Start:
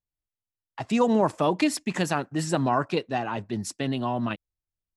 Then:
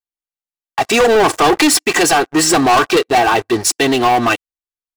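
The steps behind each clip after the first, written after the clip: tone controls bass -15 dB, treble +1 dB; comb 2.6 ms, depth 78%; sample leveller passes 5; gain +2.5 dB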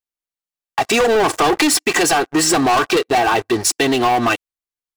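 compressor, threshold -13 dBFS, peak gain reduction 4 dB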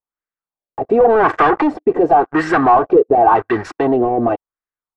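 LFO low-pass sine 0.91 Hz 470–1700 Hz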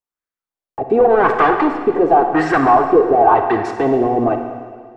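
reverb RT60 1.8 s, pre-delay 45 ms, DRR 6 dB; gain -1 dB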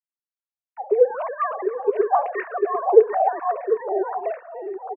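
sine-wave speech; on a send: echo 0.747 s -6.5 dB; on the sum: endless phaser -3 Hz; gain -6 dB

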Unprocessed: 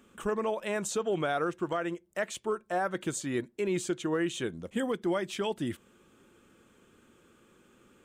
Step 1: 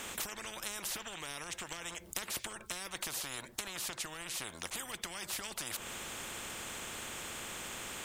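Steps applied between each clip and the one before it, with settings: compressor 10:1, threshold -40 dBFS, peak gain reduction 14.5 dB; spectral compressor 10:1; gain +12 dB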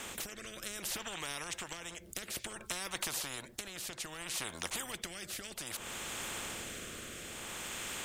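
rotary speaker horn 0.6 Hz; gain +3 dB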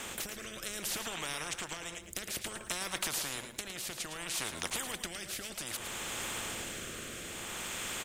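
feedback echo 0.11 s, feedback 25%, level -9 dB; gain +2 dB

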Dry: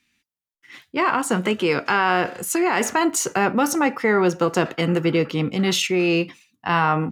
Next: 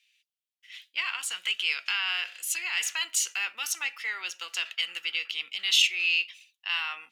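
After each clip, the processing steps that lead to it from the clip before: resonant high-pass 2900 Hz, resonance Q 2.7; gain -4.5 dB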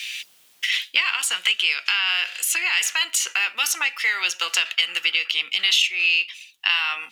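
three-band squash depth 100%; gain +7.5 dB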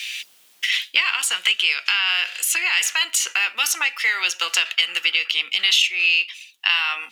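HPF 170 Hz 12 dB/oct; gain +1.5 dB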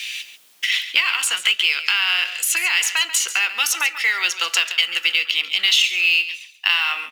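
echo 0.139 s -12.5 dB; in parallel at -5 dB: short-mantissa float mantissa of 2-bit; on the sum: gain -3 dB

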